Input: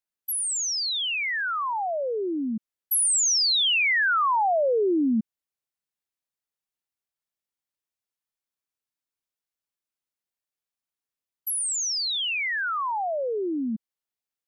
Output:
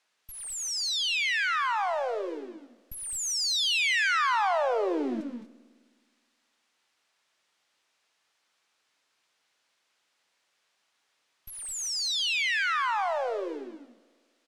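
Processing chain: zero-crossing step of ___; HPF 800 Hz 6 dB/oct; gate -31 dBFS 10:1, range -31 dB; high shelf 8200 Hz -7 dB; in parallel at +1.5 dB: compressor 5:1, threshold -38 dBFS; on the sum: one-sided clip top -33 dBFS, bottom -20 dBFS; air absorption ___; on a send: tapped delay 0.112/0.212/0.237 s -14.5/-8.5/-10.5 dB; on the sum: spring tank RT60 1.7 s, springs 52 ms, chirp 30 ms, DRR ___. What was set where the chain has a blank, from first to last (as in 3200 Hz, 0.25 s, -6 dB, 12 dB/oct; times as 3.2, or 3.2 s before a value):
-35 dBFS, 70 m, 18 dB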